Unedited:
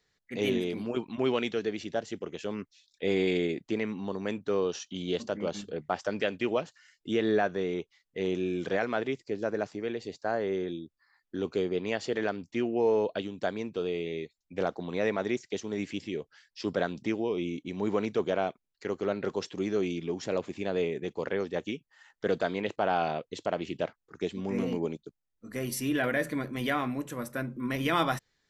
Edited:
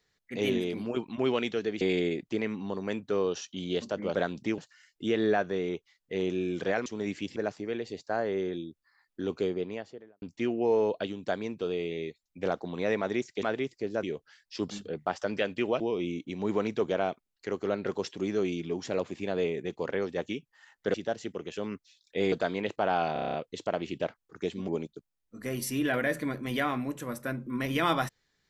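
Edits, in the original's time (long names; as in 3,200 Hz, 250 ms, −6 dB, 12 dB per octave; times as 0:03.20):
0:01.81–0:03.19: move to 0:22.32
0:05.53–0:06.63: swap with 0:16.75–0:17.18
0:08.91–0:09.51: swap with 0:15.58–0:16.08
0:11.49–0:12.37: fade out and dull
0:23.13: stutter 0.03 s, 8 plays
0:24.47–0:24.78: remove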